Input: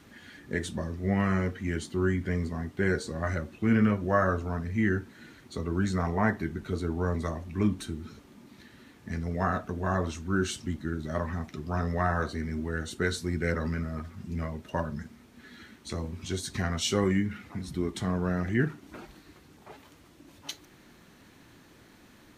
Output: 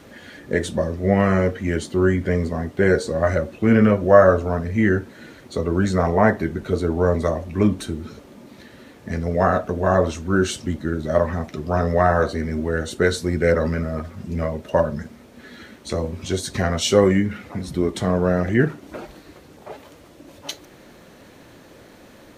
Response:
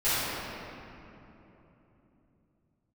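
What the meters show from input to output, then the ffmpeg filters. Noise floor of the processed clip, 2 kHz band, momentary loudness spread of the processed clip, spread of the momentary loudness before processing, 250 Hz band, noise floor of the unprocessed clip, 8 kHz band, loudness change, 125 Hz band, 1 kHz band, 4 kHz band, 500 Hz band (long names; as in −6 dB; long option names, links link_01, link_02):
−47 dBFS, +7.5 dB, 15 LU, 15 LU, +8.0 dB, −56 dBFS, +7.0 dB, +9.5 dB, +7.0 dB, +9.5 dB, +7.0 dB, +14.0 dB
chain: -af "equalizer=frequency=550:width=1.9:gain=10.5,volume=7dB"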